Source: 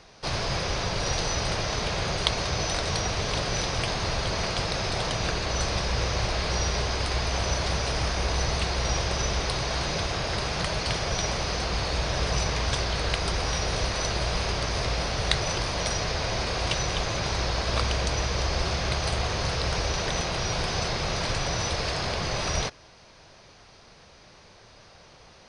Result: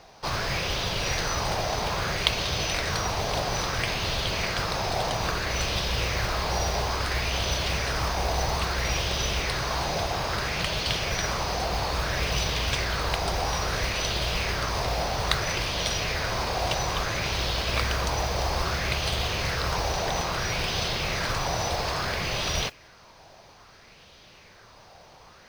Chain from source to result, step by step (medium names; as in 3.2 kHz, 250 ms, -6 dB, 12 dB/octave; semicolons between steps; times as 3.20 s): modulation noise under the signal 20 dB; sweeping bell 0.6 Hz 730–3300 Hz +8 dB; trim -1.5 dB